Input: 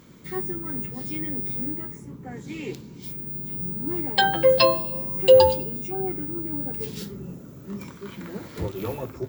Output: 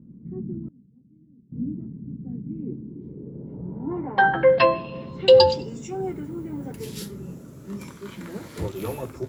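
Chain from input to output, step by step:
low-pass filter sweep 220 Hz → 11,000 Hz, 0:02.61–0:06.14
0:00.67–0:01.52: gate with flip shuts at −29 dBFS, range −24 dB

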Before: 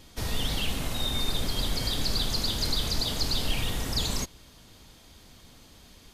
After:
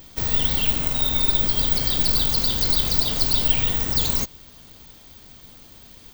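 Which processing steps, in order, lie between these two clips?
bad sample-rate conversion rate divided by 2×, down filtered, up zero stuff
level +3.5 dB

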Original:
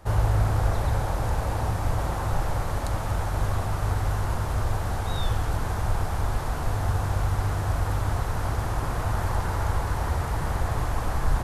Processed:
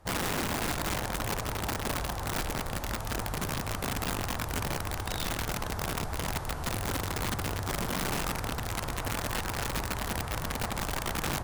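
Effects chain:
harmonic generator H 7 −31 dB, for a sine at −10 dBFS
0:07.81–0:08.39: flutter between parallel walls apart 3.9 metres, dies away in 0.3 s
wrap-around overflow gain 20.5 dB
level −5.5 dB

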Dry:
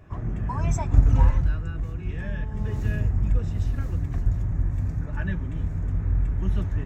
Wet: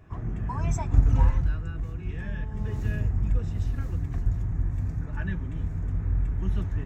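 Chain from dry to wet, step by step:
notch filter 580 Hz, Q 12
level −2.5 dB

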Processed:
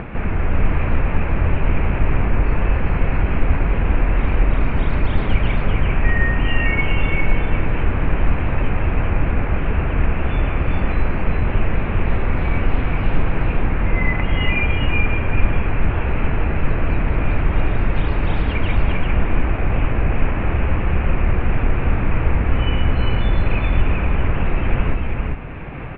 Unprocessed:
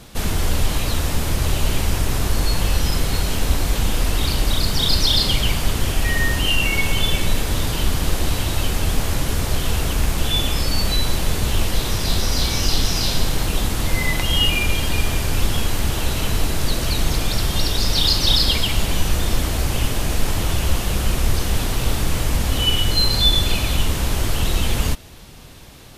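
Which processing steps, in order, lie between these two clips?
Chebyshev low-pass filter 2,500 Hz, order 5
upward compression, threshold −20 dBFS
on a send: single-tap delay 397 ms −3 dB
on the sum: level +1 dB

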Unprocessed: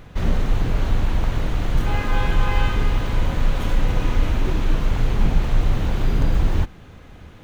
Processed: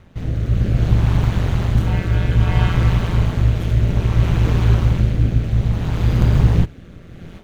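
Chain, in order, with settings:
automatic gain control gain up to 14.5 dB
rotating-speaker cabinet horn 0.6 Hz
ring modulation 87 Hz

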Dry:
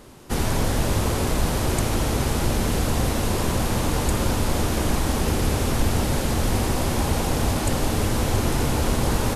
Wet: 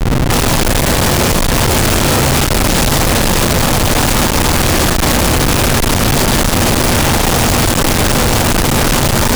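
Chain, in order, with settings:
coupled-rooms reverb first 0.6 s, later 1.5 s, DRR −3.5 dB
comparator with hysteresis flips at −36.5 dBFS
level +6 dB

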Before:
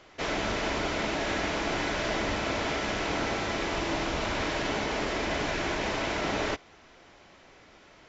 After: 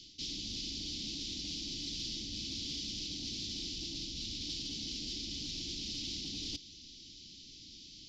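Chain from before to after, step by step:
elliptic band-stop filter 290–3,200 Hz, stop band 50 dB
reversed playback
downward compressor 12 to 1, threshold −43 dBFS, peak gain reduction 13.5 dB
reversed playback
soft clipping −38.5 dBFS, distortion −21 dB
parametric band 4,800 Hz +15 dB 0.95 octaves
level +1.5 dB

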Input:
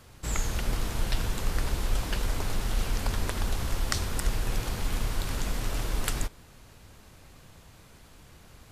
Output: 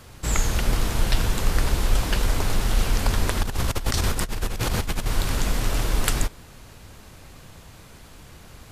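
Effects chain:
0:03.43–0:05.06: compressor whose output falls as the input rises −30 dBFS, ratio −0.5
level +7 dB

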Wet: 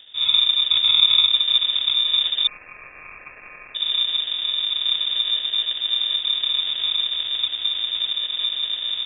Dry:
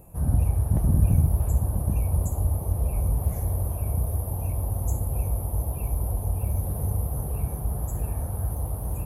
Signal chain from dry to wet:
decimation without filtering 36×
0:02.47–0:03.75: linear-phase brick-wall high-pass 860 Hz
voice inversion scrambler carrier 3,600 Hz
level +1.5 dB

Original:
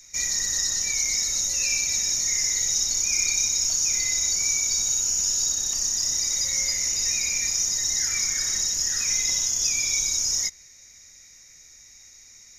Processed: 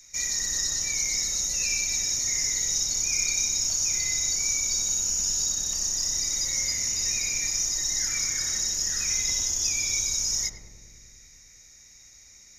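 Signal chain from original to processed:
feedback echo with a low-pass in the loop 102 ms, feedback 80%, low-pass 860 Hz, level −3 dB
level −2.5 dB

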